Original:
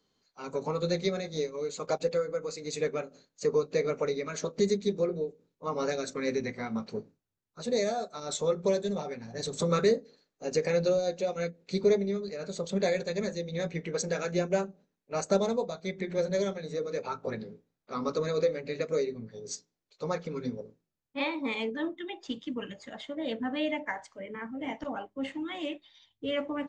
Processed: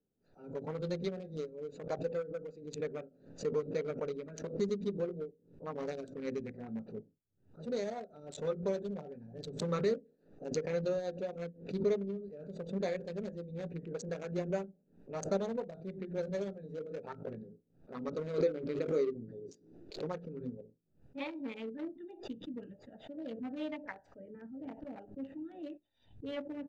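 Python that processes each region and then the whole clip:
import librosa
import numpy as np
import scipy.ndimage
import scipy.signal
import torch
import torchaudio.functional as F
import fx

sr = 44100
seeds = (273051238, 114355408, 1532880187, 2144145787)

y = fx.chain(x, sr, fx.peak_eq(hz=340.0, db=10.0, octaves=0.68),
    fx.pre_swell(db_per_s=67.0), at=(18.38, 20.08))
y = fx.wiener(y, sr, points=41)
y = fx.high_shelf(y, sr, hz=5700.0, db=-9.0)
y = fx.pre_swell(y, sr, db_per_s=130.0)
y = y * 10.0 ** (-6.5 / 20.0)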